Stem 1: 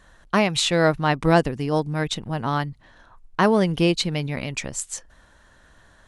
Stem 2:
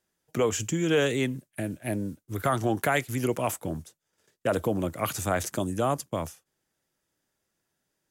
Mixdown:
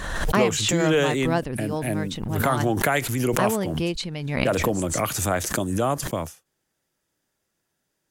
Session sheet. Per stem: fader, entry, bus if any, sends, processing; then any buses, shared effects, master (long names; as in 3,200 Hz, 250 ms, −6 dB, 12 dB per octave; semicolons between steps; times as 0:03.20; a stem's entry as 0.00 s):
+1.0 dB, 0.00 s, no send, automatic ducking −8 dB, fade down 0.70 s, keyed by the second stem
+2.5 dB, 0.00 s, no send, no processing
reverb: not used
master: background raised ahead of every attack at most 40 dB per second